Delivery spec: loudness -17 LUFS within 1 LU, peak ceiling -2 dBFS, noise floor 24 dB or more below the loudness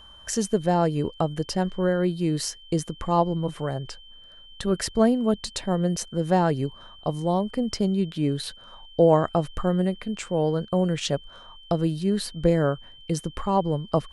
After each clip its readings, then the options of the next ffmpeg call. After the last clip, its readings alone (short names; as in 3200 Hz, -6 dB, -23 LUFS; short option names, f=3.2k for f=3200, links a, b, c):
steady tone 3100 Hz; tone level -47 dBFS; loudness -25.5 LUFS; peak -7.5 dBFS; loudness target -17.0 LUFS
-> -af "bandreject=f=3.1k:w=30"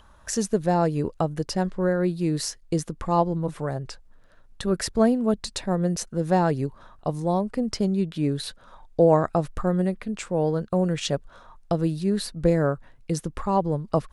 steady tone none; loudness -25.5 LUFS; peak -7.5 dBFS; loudness target -17.0 LUFS
-> -af "volume=8.5dB,alimiter=limit=-2dB:level=0:latency=1"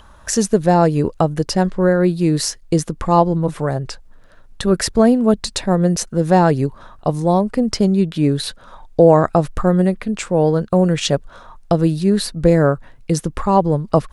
loudness -17.0 LUFS; peak -2.0 dBFS; noise floor -44 dBFS